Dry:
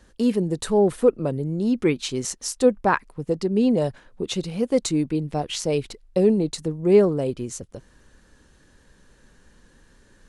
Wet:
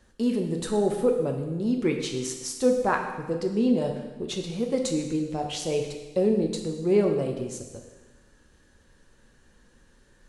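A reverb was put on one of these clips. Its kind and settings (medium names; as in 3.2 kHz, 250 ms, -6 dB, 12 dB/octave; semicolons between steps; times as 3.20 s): plate-style reverb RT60 1.2 s, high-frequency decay 1×, DRR 2.5 dB; trim -5.5 dB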